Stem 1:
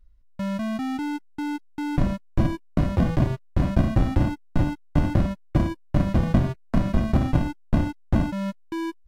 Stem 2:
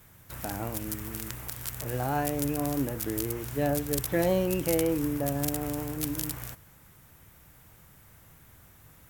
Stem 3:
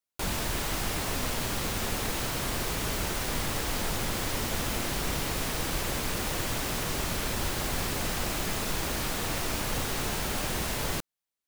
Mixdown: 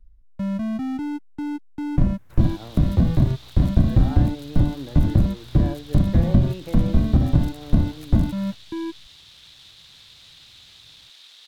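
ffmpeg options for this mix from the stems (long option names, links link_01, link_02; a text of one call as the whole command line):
ffmpeg -i stem1.wav -i stem2.wav -i stem3.wav -filter_complex "[0:a]lowshelf=frequency=410:gain=11.5,volume=-6.5dB[link_01];[1:a]alimiter=limit=-14.5dB:level=0:latency=1:release=231,lowpass=frequency=2300:poles=1,adelay=2000,volume=-4.5dB[link_02];[2:a]acrusher=bits=4:mix=0:aa=0.5,bandpass=frequency=3700:width_type=q:width=5.2:csg=0,adelay=2200,volume=-4.5dB[link_03];[link_01][link_02][link_03]amix=inputs=3:normalize=0,acrossover=split=260[link_04][link_05];[link_05]acompressor=threshold=-25dB:ratio=6[link_06];[link_04][link_06]amix=inputs=2:normalize=0" out.wav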